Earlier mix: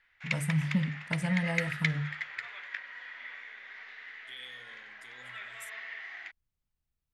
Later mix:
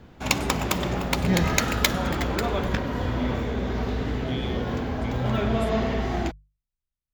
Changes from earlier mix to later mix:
first voice −8.0 dB
second voice: remove first difference
background: remove four-pole ladder band-pass 2,100 Hz, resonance 70%

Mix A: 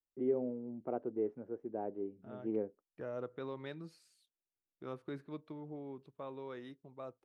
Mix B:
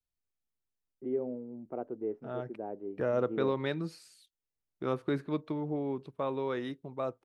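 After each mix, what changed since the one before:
first voice: entry +0.85 s
second voice +12.0 dB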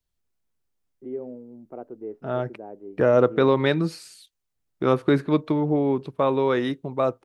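second voice +12.0 dB

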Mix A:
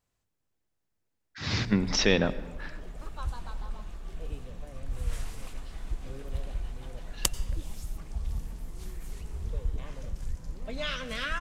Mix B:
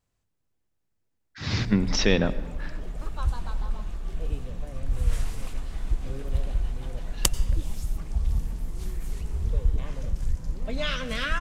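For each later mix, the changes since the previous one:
background +3.5 dB
master: add low-shelf EQ 280 Hz +4.5 dB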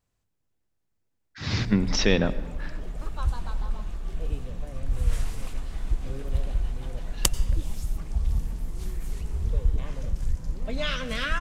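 nothing changed

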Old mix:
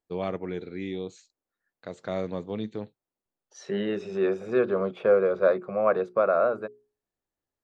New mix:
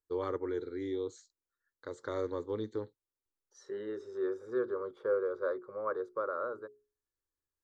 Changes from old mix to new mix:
second voice −8.5 dB
master: add phaser with its sweep stopped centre 690 Hz, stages 6

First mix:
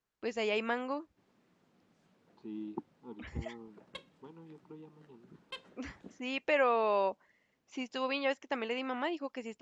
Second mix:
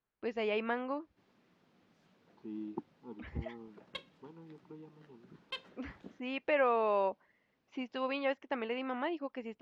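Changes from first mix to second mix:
background: remove head-to-tape spacing loss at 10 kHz 27 dB
master: add high-frequency loss of the air 250 metres

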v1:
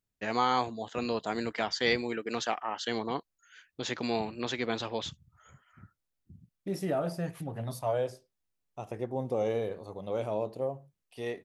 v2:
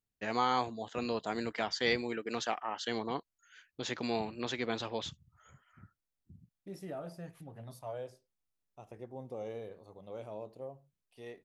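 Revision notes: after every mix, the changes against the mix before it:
first voice −3.0 dB
second voice −11.5 dB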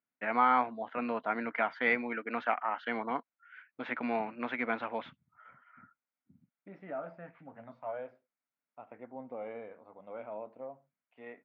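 master: add loudspeaker in its box 250–2,400 Hz, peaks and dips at 250 Hz +7 dB, 380 Hz −8 dB, 660 Hz +4 dB, 950 Hz +4 dB, 1,400 Hz +9 dB, 2,200 Hz +8 dB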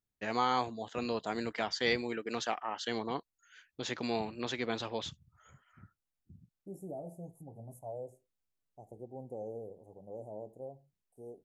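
second voice: add Chebyshev band-stop filter 820–7,100 Hz, order 4
master: remove loudspeaker in its box 250–2,400 Hz, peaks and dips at 250 Hz +7 dB, 380 Hz −8 dB, 660 Hz +4 dB, 950 Hz +4 dB, 1,400 Hz +9 dB, 2,200 Hz +8 dB

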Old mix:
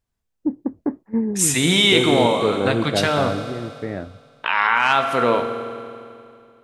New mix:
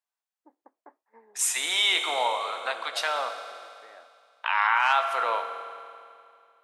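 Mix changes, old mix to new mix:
first voice −9.0 dB
master: add four-pole ladder high-pass 640 Hz, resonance 30%

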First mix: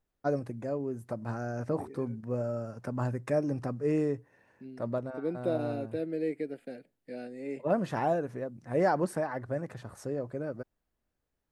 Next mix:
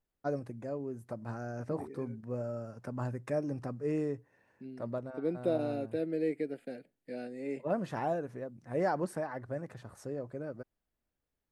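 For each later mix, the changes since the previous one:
first voice −4.5 dB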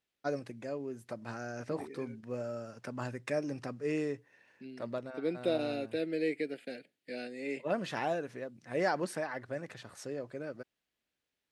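master: add meter weighting curve D

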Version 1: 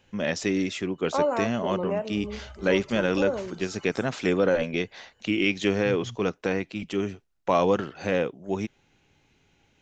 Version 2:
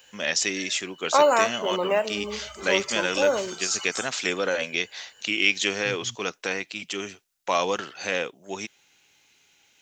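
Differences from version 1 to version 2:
second voice +8.0 dB
background +9.0 dB
master: add spectral tilt +4.5 dB per octave

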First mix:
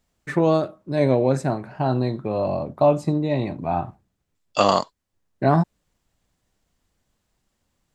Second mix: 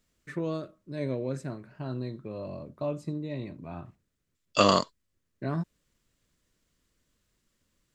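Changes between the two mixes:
first voice −11.5 dB
master: add parametric band 790 Hz −14 dB 0.49 octaves

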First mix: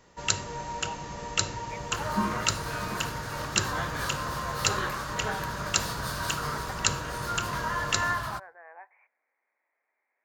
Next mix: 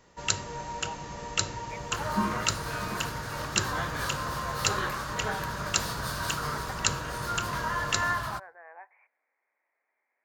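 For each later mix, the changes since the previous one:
first sound: send −7.0 dB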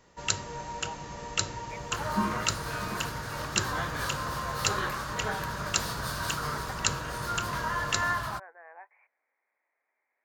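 reverb: off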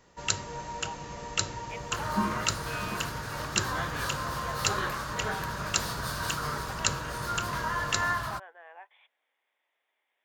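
speech: remove Butterworth low-pass 2,400 Hz 96 dB per octave

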